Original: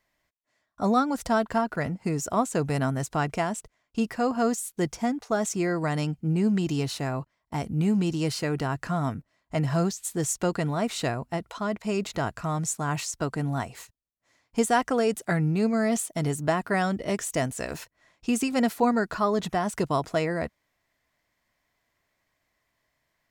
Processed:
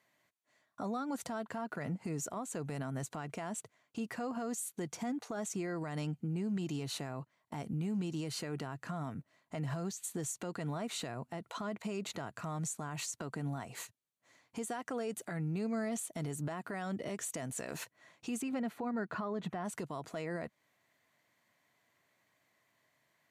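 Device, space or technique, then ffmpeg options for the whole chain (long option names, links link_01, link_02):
podcast mastering chain: -filter_complex "[0:a]bandreject=frequency=5200:width=8.1,asplit=3[link_01][link_02][link_03];[link_01]afade=type=out:start_time=18.41:duration=0.02[link_04];[link_02]bass=frequency=250:gain=3,treble=frequency=4000:gain=-13,afade=type=in:start_time=18.41:duration=0.02,afade=type=out:start_time=19.64:duration=0.02[link_05];[link_03]afade=type=in:start_time=19.64:duration=0.02[link_06];[link_04][link_05][link_06]amix=inputs=3:normalize=0,highpass=frequency=110:width=0.5412,highpass=frequency=110:width=1.3066,acompressor=threshold=-35dB:ratio=2.5,alimiter=level_in=6.5dB:limit=-24dB:level=0:latency=1:release=107,volume=-6.5dB,volume=1.5dB" -ar 32000 -c:a libmp3lame -b:a 112k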